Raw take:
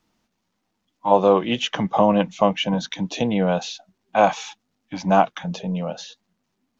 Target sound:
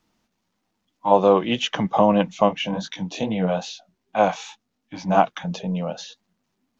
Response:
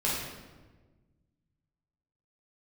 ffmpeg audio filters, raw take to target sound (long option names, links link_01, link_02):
-filter_complex "[0:a]asplit=3[link_01][link_02][link_03];[link_01]afade=type=out:start_time=2.48:duration=0.02[link_04];[link_02]flanger=delay=18:depth=6.2:speed=2.4,afade=type=in:start_time=2.48:duration=0.02,afade=type=out:start_time=5.16:duration=0.02[link_05];[link_03]afade=type=in:start_time=5.16:duration=0.02[link_06];[link_04][link_05][link_06]amix=inputs=3:normalize=0"